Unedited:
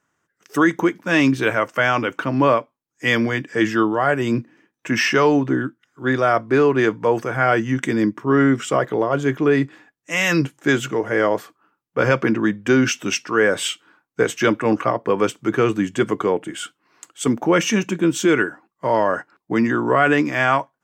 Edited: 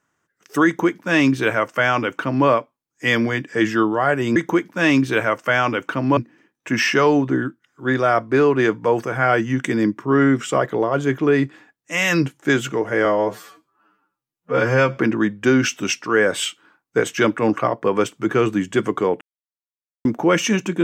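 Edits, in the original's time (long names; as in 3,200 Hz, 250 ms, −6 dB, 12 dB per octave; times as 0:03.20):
0:00.66–0:02.47: duplicate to 0:04.36
0:11.24–0:12.20: time-stretch 2×
0:16.44–0:17.28: silence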